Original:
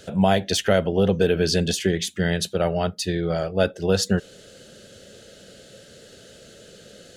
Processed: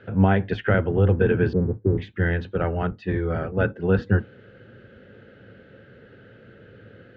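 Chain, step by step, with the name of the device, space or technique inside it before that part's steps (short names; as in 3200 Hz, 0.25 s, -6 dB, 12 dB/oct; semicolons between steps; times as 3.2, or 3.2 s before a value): 1.53–1.98 steep low-pass 630 Hz 36 dB/oct; sub-octave bass pedal (octaver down 1 oct, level +1 dB; speaker cabinet 66–2200 Hz, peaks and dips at 76 Hz -6 dB, 110 Hz +5 dB, 160 Hz -4 dB, 630 Hz -9 dB, 1500 Hz +4 dB)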